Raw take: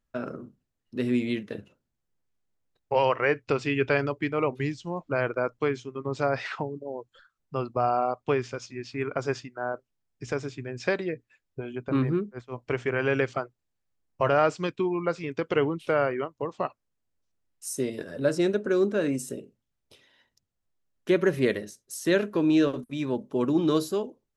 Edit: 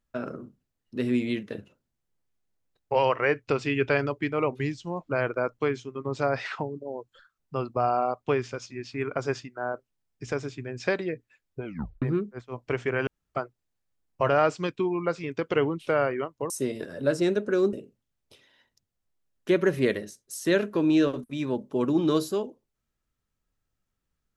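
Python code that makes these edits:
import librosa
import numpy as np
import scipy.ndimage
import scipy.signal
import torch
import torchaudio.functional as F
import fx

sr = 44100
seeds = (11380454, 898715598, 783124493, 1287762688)

y = fx.edit(x, sr, fx.tape_stop(start_s=11.65, length_s=0.37),
    fx.room_tone_fill(start_s=13.07, length_s=0.28),
    fx.cut(start_s=16.5, length_s=1.18),
    fx.cut(start_s=18.91, length_s=0.42), tone=tone)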